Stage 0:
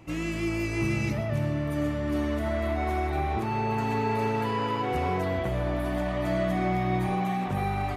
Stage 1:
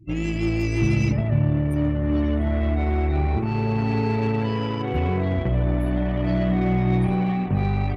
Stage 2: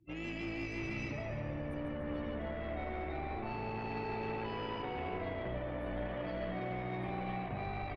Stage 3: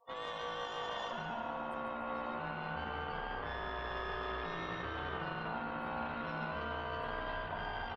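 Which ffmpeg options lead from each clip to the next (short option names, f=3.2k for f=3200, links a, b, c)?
-filter_complex "[0:a]afftdn=nr=32:nf=-43,equalizer=f=1.1k:w=0.46:g=-13.5,asplit=2[a][b];[b]acrusher=bits=4:mix=0:aa=0.5,volume=-10.5dB[c];[a][c]amix=inputs=2:normalize=0,volume=7.5dB"
-filter_complex "[0:a]acrossover=split=400 4800:gain=0.224 1 0.126[a][b][c];[a][b][c]amix=inputs=3:normalize=0,alimiter=limit=-23dB:level=0:latency=1:release=24,asplit=8[d][e][f][g][h][i][j][k];[e]adelay=145,afreqshift=-61,volume=-7dB[l];[f]adelay=290,afreqshift=-122,volume=-12dB[m];[g]adelay=435,afreqshift=-183,volume=-17.1dB[n];[h]adelay=580,afreqshift=-244,volume=-22.1dB[o];[i]adelay=725,afreqshift=-305,volume=-27.1dB[p];[j]adelay=870,afreqshift=-366,volume=-32.2dB[q];[k]adelay=1015,afreqshift=-427,volume=-37.2dB[r];[d][l][m][n][o][p][q][r]amix=inputs=8:normalize=0,volume=-8.5dB"
-af "aeval=exprs='val(0)*sin(2*PI*820*n/s)':c=same,volume=2dB"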